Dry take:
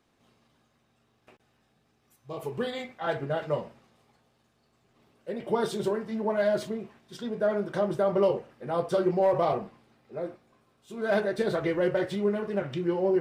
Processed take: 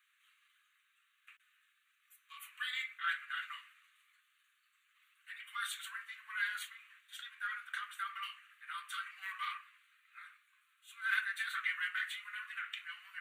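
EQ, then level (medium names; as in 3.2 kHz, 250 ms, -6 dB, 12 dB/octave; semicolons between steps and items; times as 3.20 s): steep high-pass 1.1 kHz 72 dB/octave; static phaser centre 2.2 kHz, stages 4; +4.0 dB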